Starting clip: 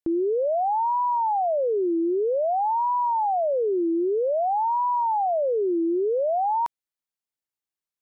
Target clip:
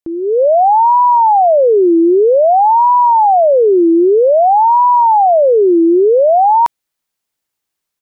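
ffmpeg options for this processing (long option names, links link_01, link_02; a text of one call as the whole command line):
ffmpeg -i in.wav -af "dynaudnorm=framelen=210:gausssize=3:maxgain=13dB,volume=1.5dB" out.wav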